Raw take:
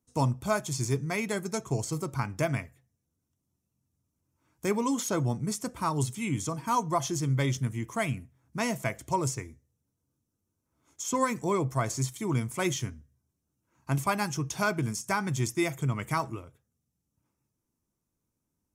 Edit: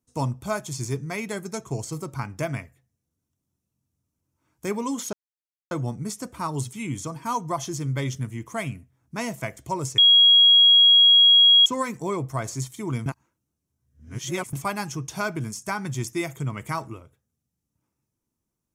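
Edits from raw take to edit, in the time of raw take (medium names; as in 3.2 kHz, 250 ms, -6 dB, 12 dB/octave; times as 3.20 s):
5.13 s: insert silence 0.58 s
9.40–11.08 s: bleep 3.3 kHz -11 dBFS
12.48–13.95 s: reverse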